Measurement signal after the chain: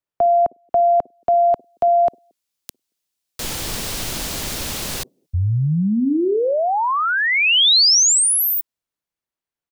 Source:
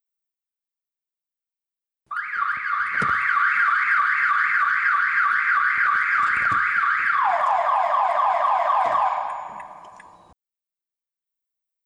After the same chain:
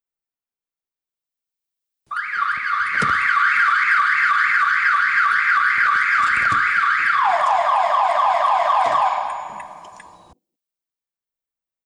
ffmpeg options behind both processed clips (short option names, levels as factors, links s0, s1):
-filter_complex "[0:a]highshelf=f=2700:g=-11.5,acrossover=split=270|340|3300[s0][s1][s2][s3];[s1]aecho=1:1:53|61|100|227:0.668|0.335|0.106|0.133[s4];[s3]dynaudnorm=f=180:g=17:m=6.68[s5];[s0][s4][s2][s5]amix=inputs=4:normalize=0,volume=1.58"